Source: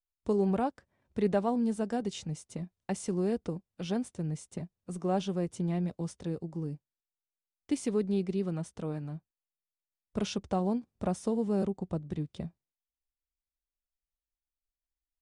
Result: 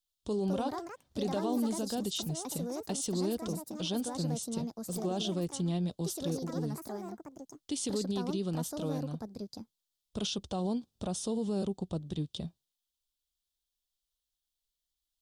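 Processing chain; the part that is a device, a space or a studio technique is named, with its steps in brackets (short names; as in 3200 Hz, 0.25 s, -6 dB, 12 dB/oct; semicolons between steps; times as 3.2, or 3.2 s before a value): over-bright horn tweeter (resonant high shelf 2700 Hz +7.5 dB, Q 3; limiter -25.5 dBFS, peak gain reduction 8.5 dB); echoes that change speed 0.283 s, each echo +5 st, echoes 2, each echo -6 dB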